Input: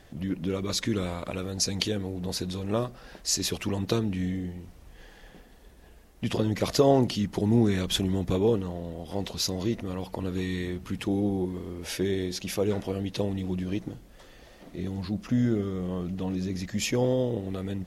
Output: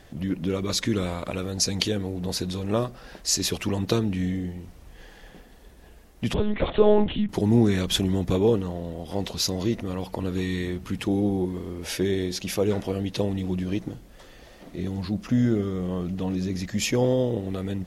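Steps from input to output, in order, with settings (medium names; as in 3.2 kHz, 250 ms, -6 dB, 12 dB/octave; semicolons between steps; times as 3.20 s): 6.34–7.29 s: monotone LPC vocoder at 8 kHz 210 Hz; trim +3 dB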